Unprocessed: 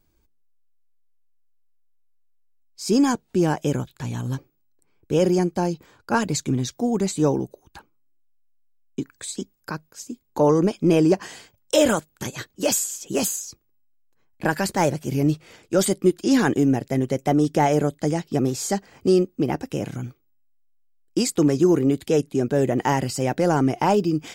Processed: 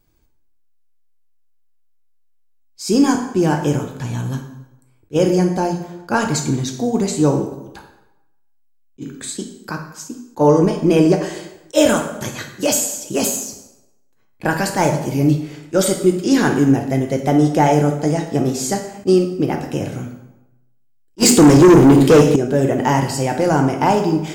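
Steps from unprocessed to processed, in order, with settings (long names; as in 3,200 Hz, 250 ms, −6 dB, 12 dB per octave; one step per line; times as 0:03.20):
dense smooth reverb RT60 0.91 s, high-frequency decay 0.75×, DRR 3 dB
0:21.18–0:22.36: leveller curve on the samples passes 3
level that may rise only so fast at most 580 dB per second
level +3 dB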